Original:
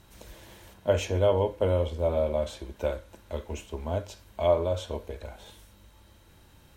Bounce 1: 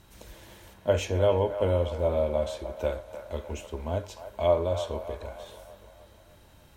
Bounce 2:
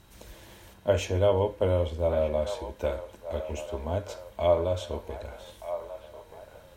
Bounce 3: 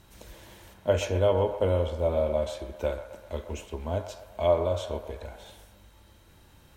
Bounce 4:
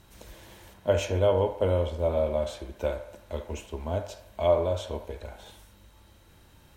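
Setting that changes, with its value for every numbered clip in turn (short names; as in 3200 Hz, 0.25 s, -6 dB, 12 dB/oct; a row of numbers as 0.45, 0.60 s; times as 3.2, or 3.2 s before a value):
band-limited delay, time: 302, 1229, 128, 73 ms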